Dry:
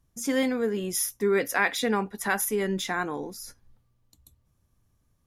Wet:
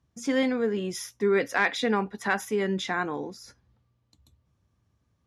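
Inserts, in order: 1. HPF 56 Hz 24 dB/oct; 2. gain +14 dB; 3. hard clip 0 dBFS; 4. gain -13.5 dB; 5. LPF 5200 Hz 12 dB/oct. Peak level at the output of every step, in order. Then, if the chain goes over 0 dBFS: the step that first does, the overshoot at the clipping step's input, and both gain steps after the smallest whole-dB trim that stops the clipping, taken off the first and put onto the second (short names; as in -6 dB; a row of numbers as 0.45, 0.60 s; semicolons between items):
-10.5, +3.5, 0.0, -13.5, -13.0 dBFS; step 2, 3.5 dB; step 2 +10 dB, step 4 -9.5 dB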